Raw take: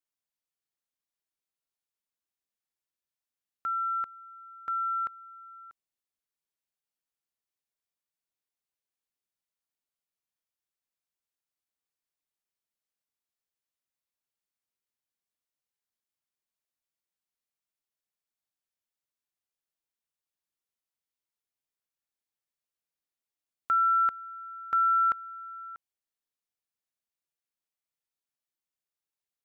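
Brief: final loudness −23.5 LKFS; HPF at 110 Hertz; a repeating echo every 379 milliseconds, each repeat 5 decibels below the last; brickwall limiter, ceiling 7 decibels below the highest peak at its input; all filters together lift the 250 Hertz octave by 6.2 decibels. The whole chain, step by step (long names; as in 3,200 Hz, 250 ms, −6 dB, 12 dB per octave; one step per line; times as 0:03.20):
high-pass filter 110 Hz
parametric band 250 Hz +8.5 dB
brickwall limiter −26.5 dBFS
repeating echo 379 ms, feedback 56%, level −5 dB
level +9.5 dB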